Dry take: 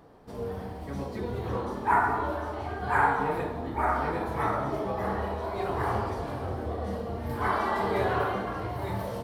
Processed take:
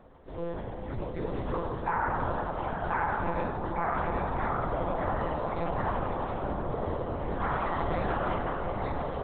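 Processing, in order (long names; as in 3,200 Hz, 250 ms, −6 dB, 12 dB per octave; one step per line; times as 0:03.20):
brickwall limiter −21 dBFS, peak gain reduction 9.5 dB
one-pitch LPC vocoder at 8 kHz 170 Hz
delay with a band-pass on its return 355 ms, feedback 80%, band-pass 660 Hz, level −9 dB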